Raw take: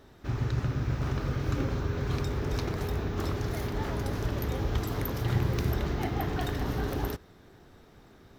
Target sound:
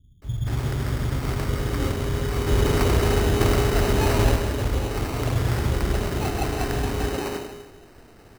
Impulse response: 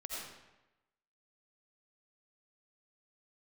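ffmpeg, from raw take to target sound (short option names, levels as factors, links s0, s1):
-filter_complex "[0:a]acrossover=split=170[s0][s1];[s1]adelay=220[s2];[s0][s2]amix=inputs=2:normalize=0,asettb=1/sr,asplit=3[s3][s4][s5];[s3]atrim=end=2.474[s6];[s4]atrim=start=2.47:end=4.36,asetpts=PTS-STARTPTS,afade=t=in:d=0.004:c=qsin,afade=t=out:st=1.886:d=0.004:c=qsin,acontrast=47[s7];[s5]atrim=start=4.356[s8];[s6][s7]acrossfade=d=0.004:c1=hsin:c2=qsin[s9];[s9][s8]acrossfade=d=0.004:c1=qsin:c2=hsin,asplit=2[s10][s11];[1:a]atrim=start_sample=2205[s12];[s11][s12]afir=irnorm=-1:irlink=0,volume=1[s13];[s10][s13]amix=inputs=2:normalize=0,acrusher=samples=13:mix=1:aa=0.000001,volume=1.19"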